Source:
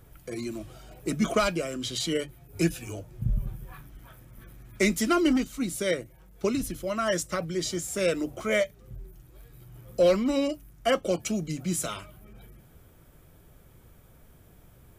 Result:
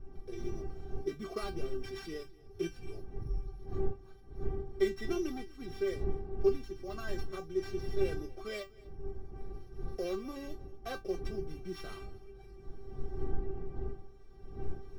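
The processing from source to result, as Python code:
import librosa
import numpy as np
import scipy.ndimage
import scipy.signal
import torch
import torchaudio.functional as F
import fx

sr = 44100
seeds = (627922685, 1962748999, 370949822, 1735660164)

p1 = np.r_[np.sort(x[:len(x) // 8 * 8].reshape(-1, 8), axis=1).ravel(), x[len(x) // 8 * 8:]]
p2 = fx.dmg_wind(p1, sr, seeds[0], corner_hz=180.0, level_db=-33.0)
p3 = fx.recorder_agc(p2, sr, target_db=-17.5, rise_db_per_s=7.4, max_gain_db=30)
p4 = fx.lowpass(p3, sr, hz=1700.0, slope=6)
p5 = fx.low_shelf(p4, sr, hz=150.0, db=3.0)
p6 = fx.comb_fb(p5, sr, f0_hz=390.0, decay_s=0.16, harmonics='all', damping=0.0, mix_pct=100)
p7 = p6 + fx.echo_single(p6, sr, ms=246, db=-23.0, dry=0)
y = p7 * librosa.db_to_amplitude(4.5)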